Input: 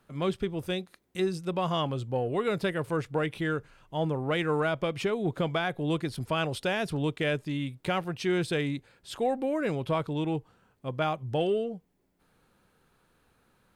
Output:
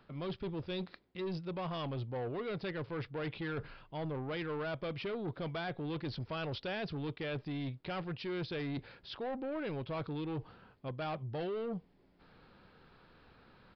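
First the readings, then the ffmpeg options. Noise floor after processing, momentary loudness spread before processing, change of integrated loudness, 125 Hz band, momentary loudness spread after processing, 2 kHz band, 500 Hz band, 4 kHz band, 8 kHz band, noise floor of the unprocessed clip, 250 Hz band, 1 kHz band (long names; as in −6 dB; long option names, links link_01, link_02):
−67 dBFS, 6 LU, −9.5 dB, −7.5 dB, 4 LU, −10.0 dB, −10.0 dB, −8.5 dB, below −25 dB, −69 dBFS, −8.5 dB, −10.5 dB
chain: -af "areverse,acompressor=threshold=-39dB:ratio=5,areverse,asoftclip=type=tanh:threshold=-39.5dB,aresample=11025,aresample=44100,volume=6dB"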